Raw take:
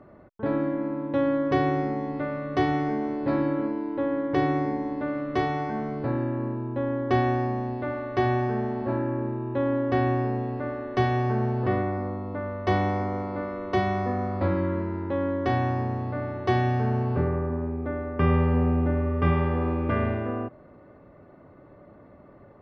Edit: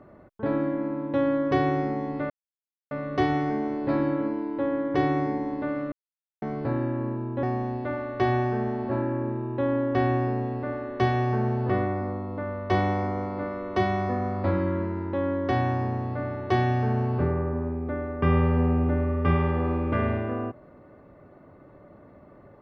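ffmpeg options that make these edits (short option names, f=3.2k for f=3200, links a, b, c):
-filter_complex "[0:a]asplit=5[a][b][c][d][e];[a]atrim=end=2.3,asetpts=PTS-STARTPTS,afade=t=out:st=2.296:d=0.004:c=hsin,apad=pad_dur=0.61[f];[b]atrim=start=2.3:end=5.31,asetpts=PTS-STARTPTS,afade=t=in:d=0.004:c=hsin,afade=t=out:st=3.006:d=0.004:c=hsin[g];[c]atrim=start=5.31:end=5.81,asetpts=PTS-STARTPTS,volume=0[h];[d]atrim=start=5.81:end=6.822,asetpts=PTS-STARTPTS,afade=t=in:d=0.004:c=hsin[i];[e]atrim=start=7.398[j];[f][g][h][i]concat=n=4:v=0:a=1[k];[k][j]acrossfade=d=0.004:c1=hsin:c2=hsin"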